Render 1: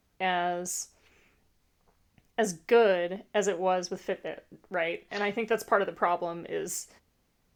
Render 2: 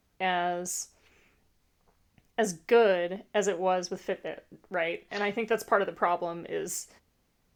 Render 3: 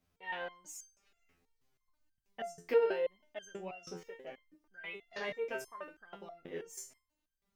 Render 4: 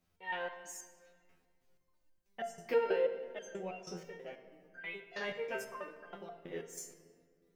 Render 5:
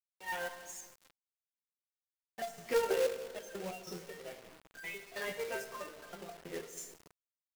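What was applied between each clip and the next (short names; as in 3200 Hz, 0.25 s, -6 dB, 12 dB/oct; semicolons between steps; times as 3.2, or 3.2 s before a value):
nothing audible
stepped resonator 6.2 Hz 86–1600 Hz; gain +1.5 dB
shoebox room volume 3600 m³, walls mixed, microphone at 0.94 m
bin magnitudes rounded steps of 15 dB; companded quantiser 4-bit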